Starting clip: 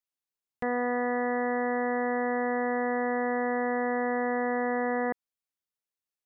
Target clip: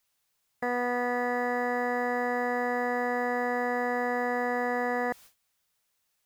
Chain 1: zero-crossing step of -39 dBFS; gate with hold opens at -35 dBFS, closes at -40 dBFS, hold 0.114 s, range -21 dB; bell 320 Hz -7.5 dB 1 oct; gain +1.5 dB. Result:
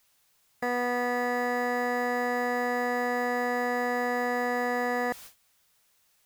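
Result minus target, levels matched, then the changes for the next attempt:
zero-crossing step: distortion +8 dB
change: zero-crossing step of -47.5 dBFS

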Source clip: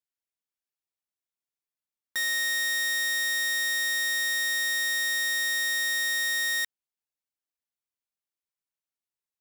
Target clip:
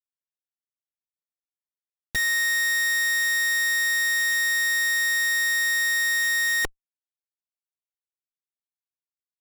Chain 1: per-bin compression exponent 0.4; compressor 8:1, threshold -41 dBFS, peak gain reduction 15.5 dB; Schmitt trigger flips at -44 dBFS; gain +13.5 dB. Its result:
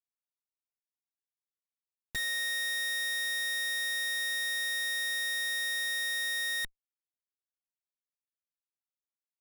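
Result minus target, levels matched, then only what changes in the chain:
compressor: peak gain reduction +8.5 dB
change: compressor 8:1, threshold -31 dBFS, peak gain reduction 6.5 dB

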